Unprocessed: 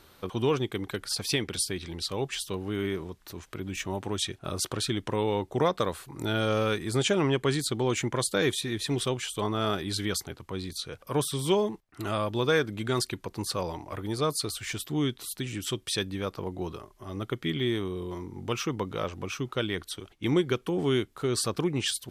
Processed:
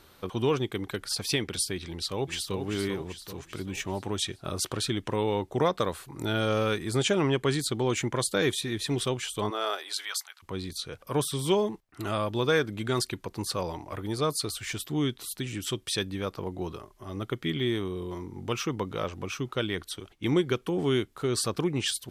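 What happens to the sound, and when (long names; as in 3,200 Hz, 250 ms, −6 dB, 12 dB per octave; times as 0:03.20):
0:01.88–0:02.55: delay throw 390 ms, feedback 55%, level −7 dB
0:09.49–0:10.42: high-pass filter 340 Hz → 1,300 Hz 24 dB per octave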